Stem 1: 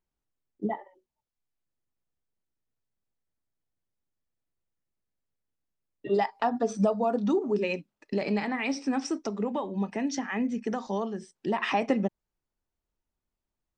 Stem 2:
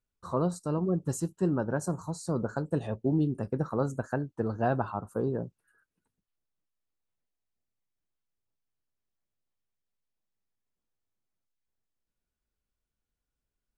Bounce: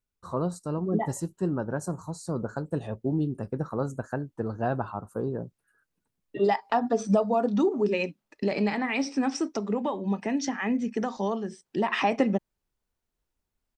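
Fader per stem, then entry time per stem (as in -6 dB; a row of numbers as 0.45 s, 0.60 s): +2.0 dB, -0.5 dB; 0.30 s, 0.00 s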